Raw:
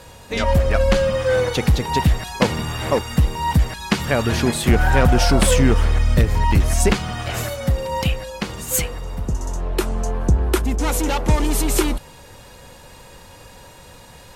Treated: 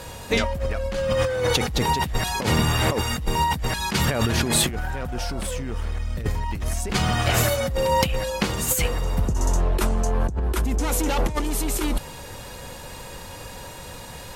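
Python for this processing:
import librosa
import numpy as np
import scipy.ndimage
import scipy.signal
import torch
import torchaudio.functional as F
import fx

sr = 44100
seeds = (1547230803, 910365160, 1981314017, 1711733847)

y = fx.high_shelf(x, sr, hz=12000.0, db=4.5)
y = fx.over_compress(y, sr, threshold_db=-23.0, ratio=-1.0)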